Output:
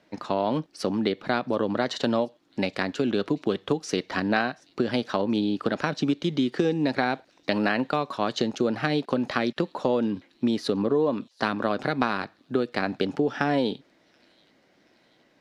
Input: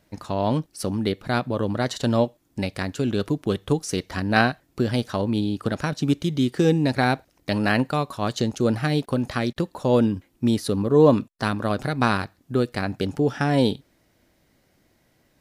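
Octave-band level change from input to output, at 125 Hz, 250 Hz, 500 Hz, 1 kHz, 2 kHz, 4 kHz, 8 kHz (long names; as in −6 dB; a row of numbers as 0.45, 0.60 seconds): −9.5, −3.0, −2.5, −2.0, −2.0, −1.5, −7.0 decibels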